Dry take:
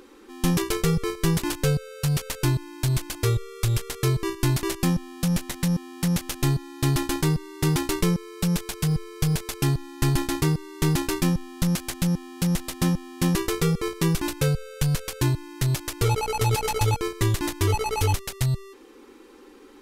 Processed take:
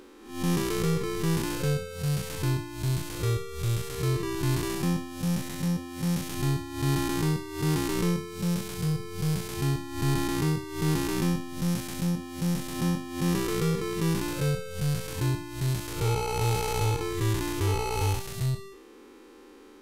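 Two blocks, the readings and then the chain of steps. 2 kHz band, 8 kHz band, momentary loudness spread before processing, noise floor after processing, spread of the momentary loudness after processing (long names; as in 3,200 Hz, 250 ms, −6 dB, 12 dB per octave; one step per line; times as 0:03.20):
−3.5 dB, −5.0 dB, 3 LU, −50 dBFS, 3 LU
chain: spectrum smeared in time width 171 ms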